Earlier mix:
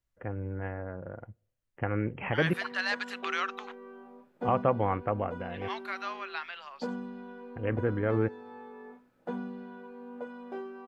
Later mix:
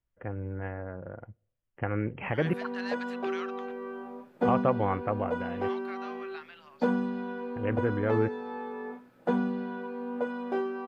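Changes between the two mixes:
second voice −9.0 dB
background +9.0 dB

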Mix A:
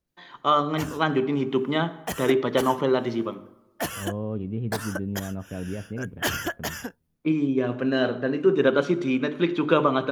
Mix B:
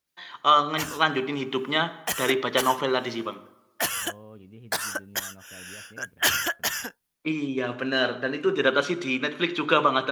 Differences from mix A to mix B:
second voice −11.0 dB
master: add tilt shelving filter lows −7.5 dB, about 770 Hz

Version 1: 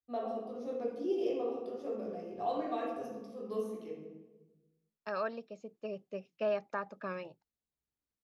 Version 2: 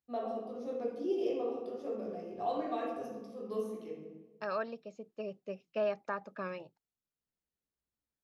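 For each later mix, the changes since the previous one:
second voice: entry −0.65 s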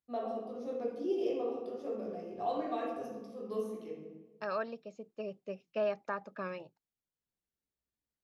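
nothing changed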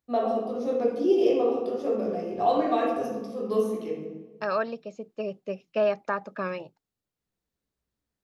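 first voice +11.5 dB
second voice +8.5 dB

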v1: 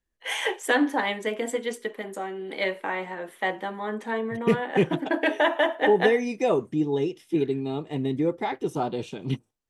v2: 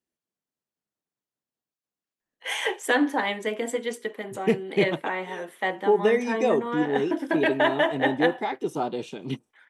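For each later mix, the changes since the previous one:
first voice: entry +2.20 s
second voice: add high-pass filter 180 Hz 12 dB per octave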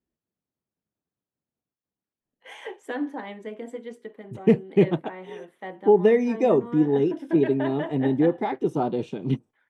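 first voice −11.0 dB
master: add spectral tilt −3 dB per octave

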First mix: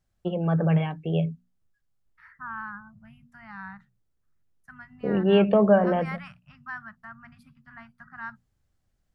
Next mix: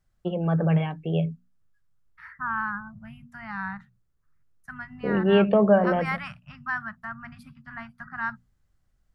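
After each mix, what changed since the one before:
second voice +7.5 dB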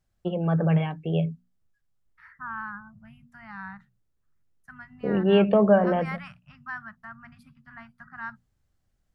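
second voice −6.5 dB

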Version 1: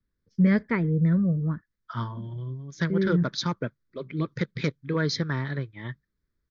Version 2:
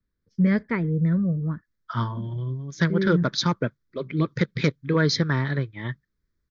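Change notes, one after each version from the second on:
second voice +5.0 dB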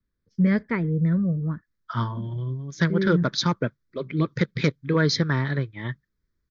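nothing changed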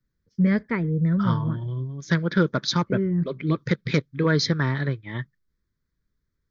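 second voice: entry −0.70 s

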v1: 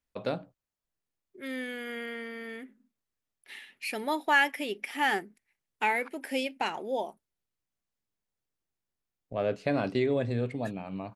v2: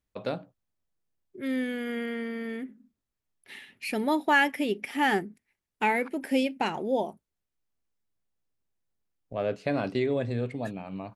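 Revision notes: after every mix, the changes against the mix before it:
second voice: remove high-pass filter 670 Hz 6 dB per octave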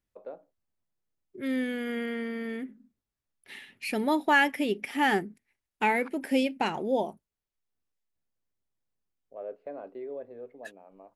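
first voice: add four-pole ladder band-pass 590 Hz, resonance 30%

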